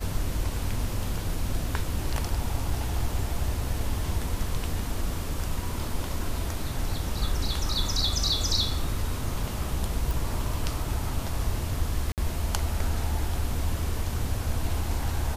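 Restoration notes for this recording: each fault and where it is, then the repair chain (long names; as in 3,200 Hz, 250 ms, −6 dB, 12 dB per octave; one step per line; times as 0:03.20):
0:10.11: click
0:12.12–0:12.18: drop-out 58 ms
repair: click removal
repair the gap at 0:12.12, 58 ms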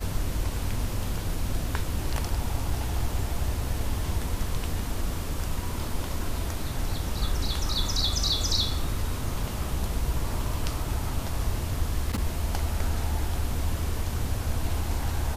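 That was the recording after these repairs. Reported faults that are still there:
none of them is left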